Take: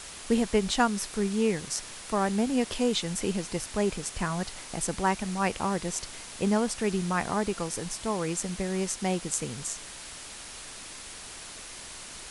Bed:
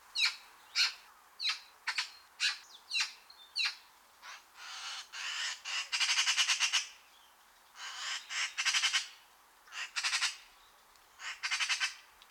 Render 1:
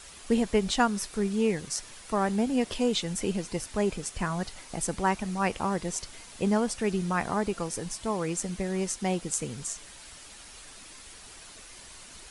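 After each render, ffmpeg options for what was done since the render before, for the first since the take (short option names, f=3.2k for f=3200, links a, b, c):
-af "afftdn=nr=7:nf=-43"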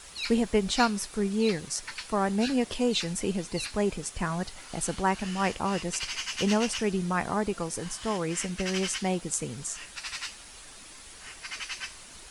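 -filter_complex "[1:a]volume=-4.5dB[a];[0:a][a]amix=inputs=2:normalize=0"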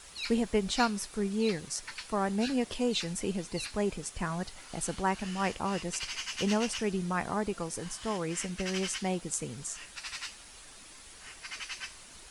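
-af "volume=-3.5dB"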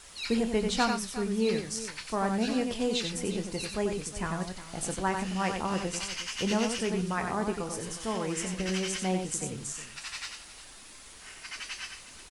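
-filter_complex "[0:a]asplit=2[a][b];[b]adelay=27,volume=-11.5dB[c];[a][c]amix=inputs=2:normalize=0,aecho=1:1:92|361:0.531|0.188"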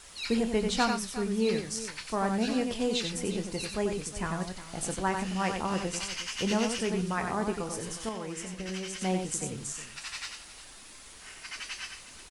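-filter_complex "[0:a]asplit=3[a][b][c];[a]atrim=end=8.092[d];[b]atrim=start=8.088:end=9.012,asetpts=PTS-STARTPTS,volume=-5.5dB[e];[c]atrim=start=9.008[f];[d][e]acrossfade=d=0.004:c1=hsin:c2=hsin[g];[g][f]acrossfade=d=0.004:c1=hsin:c2=hsin"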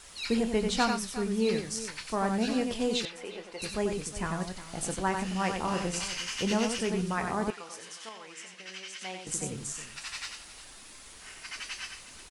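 -filter_complex "[0:a]asettb=1/sr,asplit=3[a][b][c];[a]atrim=end=3.054[d];[b]atrim=start=3.05:end=3.62,asetpts=PTS-STARTPTS,afade=t=in:d=0.004:c=qsin,afade=t=out:st=0.566:d=0.004:c=qsin,acrossover=split=440 3700:gain=0.0794 1 0.158[e][f][g];[e][f][g]amix=inputs=3:normalize=0[h];[c]atrim=start=3.616[i];[d][h]acrossfade=d=0.004:c1=hsin:c2=qsin[j];[j][i]acrossfade=d=0.004:c1=qsin:c2=hsin,asettb=1/sr,asplit=3[k][l][m];[k]atrim=end=5.584[n];[l]atrim=start=5.58:end=6.41,asetpts=PTS-STARTPTS,afade=t=in:d=0.004:c=qsin,afade=t=out:st=0.826:d=0.004:c=qsin,asplit=2[o][p];[p]adelay=34,volume=-6.5dB[q];[o][q]amix=inputs=2:normalize=0,atrim=end_sample=36603[r];[m]atrim=start=6.406[s];[n][r]acrossfade=d=0.004:c1=hsin:c2=qsin[t];[t][s]acrossfade=d=0.004:c1=qsin:c2=hsin,asettb=1/sr,asplit=3[u][v][w];[u]atrim=end=7.504[x];[v]atrim=start=7.5:end=9.27,asetpts=PTS-STARTPTS,afade=t=in:d=0.004:c=qsin,afade=t=out:st=1.766:d=0.004:c=qsin,bandpass=f=2.7k:t=q:w=0.65[y];[w]atrim=start=9.266[z];[x][y]acrossfade=d=0.004:c1=hsin:c2=qsin[aa];[aa][z]acrossfade=d=0.004:c1=qsin:c2=hsin"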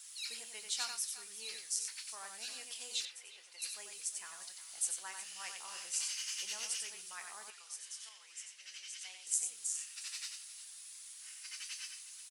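-af "highpass=f=860:p=1,aderivative"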